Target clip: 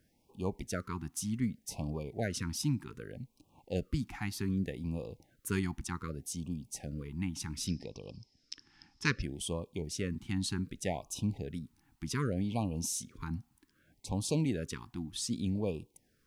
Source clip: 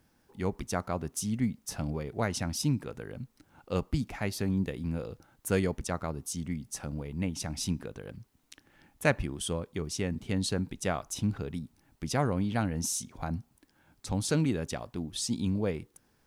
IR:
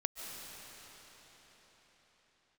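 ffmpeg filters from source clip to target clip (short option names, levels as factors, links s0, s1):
-filter_complex "[0:a]asettb=1/sr,asplit=3[s0][s1][s2];[s0]atrim=end=7.674[s3];[s1]atrim=start=7.67:end=9.22,asetpts=PTS-STARTPTS,afade=t=in:d=0.004:c=qsin,afade=t=out:st=1.546:d=0.004:c=qsin,lowpass=f=5200:t=q:w=14[s4];[s2]atrim=start=9.216[s5];[s3][s4]acrossfade=d=0.004:c1=hsin:c2=qsin[s6];[s6][s5]acrossfade=d=0.004:c1=qsin:c2=hsin,afftfilt=real='re*(1-between(b*sr/1024,490*pow(1700/490,0.5+0.5*sin(2*PI*0.65*pts/sr))/1.41,490*pow(1700/490,0.5+0.5*sin(2*PI*0.65*pts/sr))*1.41))':imag='im*(1-between(b*sr/1024,490*pow(1700/490,0.5+0.5*sin(2*PI*0.65*pts/sr))/1.41,490*pow(1700/490,0.5+0.5*sin(2*PI*0.65*pts/sr))*1.41))':win_size=1024:overlap=0.75,volume=0.668"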